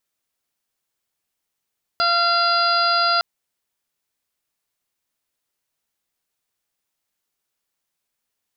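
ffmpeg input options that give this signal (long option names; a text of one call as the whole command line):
ffmpeg -f lavfi -i "aevalsrc='0.0708*sin(2*PI*688*t)+0.126*sin(2*PI*1376*t)+0.0158*sin(2*PI*2064*t)+0.0266*sin(2*PI*2752*t)+0.02*sin(2*PI*3440*t)+0.0501*sin(2*PI*4128*t)+0.0794*sin(2*PI*4816*t)':duration=1.21:sample_rate=44100" out.wav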